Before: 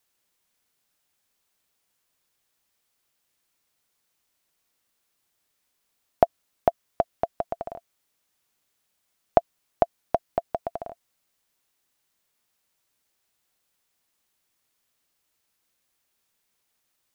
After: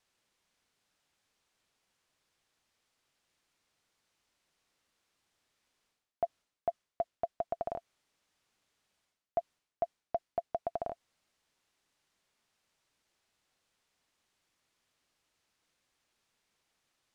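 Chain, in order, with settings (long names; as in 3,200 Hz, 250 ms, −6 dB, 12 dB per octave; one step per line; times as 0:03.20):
reversed playback
downward compressor 16 to 1, threshold −31 dBFS, peak gain reduction 20.5 dB
reversed playback
high-frequency loss of the air 60 metres
level +1 dB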